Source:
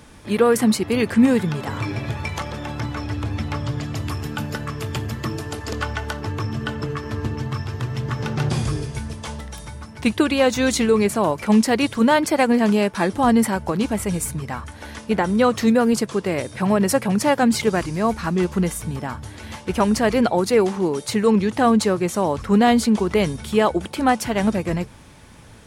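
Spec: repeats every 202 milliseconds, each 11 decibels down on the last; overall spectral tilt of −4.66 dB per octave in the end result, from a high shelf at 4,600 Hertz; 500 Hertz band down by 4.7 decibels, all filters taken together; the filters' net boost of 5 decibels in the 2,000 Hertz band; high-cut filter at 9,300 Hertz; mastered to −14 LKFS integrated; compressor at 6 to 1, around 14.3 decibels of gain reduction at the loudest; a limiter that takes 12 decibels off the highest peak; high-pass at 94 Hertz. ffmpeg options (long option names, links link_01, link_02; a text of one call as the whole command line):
ffmpeg -i in.wav -af "highpass=94,lowpass=9300,equalizer=frequency=500:width_type=o:gain=-6,equalizer=frequency=2000:width_type=o:gain=6,highshelf=frequency=4600:gain=4,acompressor=threshold=-28dB:ratio=6,alimiter=level_in=1.5dB:limit=-24dB:level=0:latency=1,volume=-1.5dB,aecho=1:1:202|404|606:0.282|0.0789|0.0221,volume=20dB" out.wav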